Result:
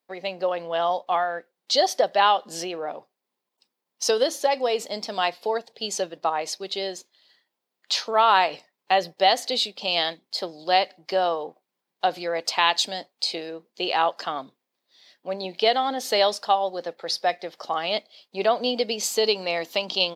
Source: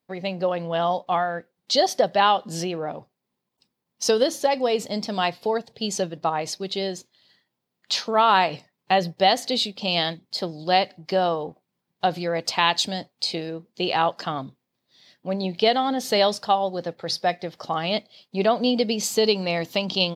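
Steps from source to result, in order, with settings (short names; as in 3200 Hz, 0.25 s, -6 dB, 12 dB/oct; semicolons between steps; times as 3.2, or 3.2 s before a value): HPF 390 Hz 12 dB/oct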